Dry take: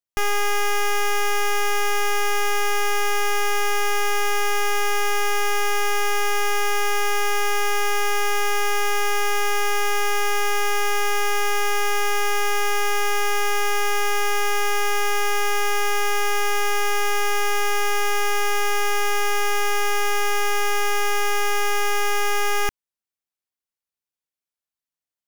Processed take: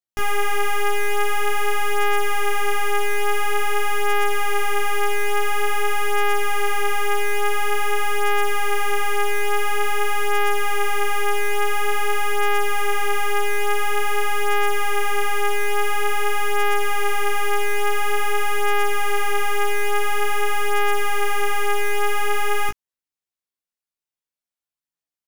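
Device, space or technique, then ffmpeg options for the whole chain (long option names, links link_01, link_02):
double-tracked vocal: -filter_complex "[0:a]asplit=2[link_01][link_02];[link_02]adelay=17,volume=-5dB[link_03];[link_01][link_03]amix=inputs=2:normalize=0,flanger=delay=17:depth=7.9:speed=0.48"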